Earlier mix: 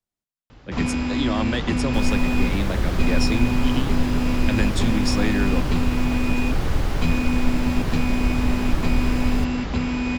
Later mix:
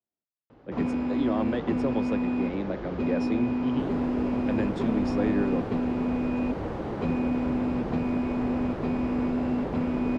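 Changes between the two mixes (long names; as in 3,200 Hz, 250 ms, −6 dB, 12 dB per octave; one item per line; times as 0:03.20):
second sound: entry +1.85 s
master: add resonant band-pass 430 Hz, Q 0.83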